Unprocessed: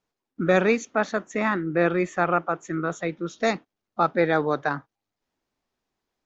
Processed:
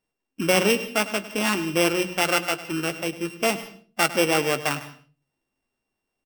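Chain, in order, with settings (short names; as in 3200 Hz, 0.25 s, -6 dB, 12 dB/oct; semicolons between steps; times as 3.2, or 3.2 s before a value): sample sorter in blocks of 16 samples; notches 60/120/180 Hz; doubler 15 ms -13 dB; echo 0.102 s -15.5 dB; on a send at -17 dB: reverb RT60 0.35 s, pre-delay 0.142 s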